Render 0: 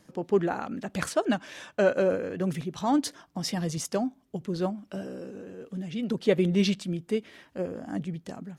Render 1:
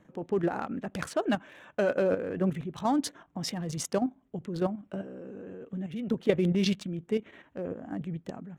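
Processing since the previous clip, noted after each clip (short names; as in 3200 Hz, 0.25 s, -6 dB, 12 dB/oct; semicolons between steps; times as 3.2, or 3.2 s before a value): Wiener smoothing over 9 samples; level quantiser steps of 9 dB; gain +2.5 dB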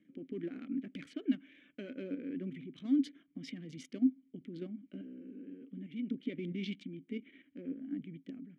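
limiter -21 dBFS, peak gain reduction 11 dB; vowel filter i; gain +4 dB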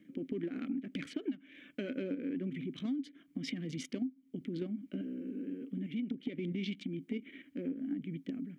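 compressor 16:1, threshold -41 dBFS, peak gain reduction 19 dB; gain +8 dB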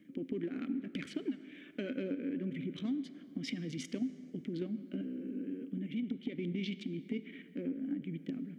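reverb RT60 3.4 s, pre-delay 28 ms, DRR 13.5 dB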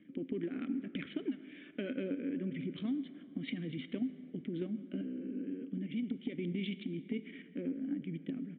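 downsampling 8000 Hz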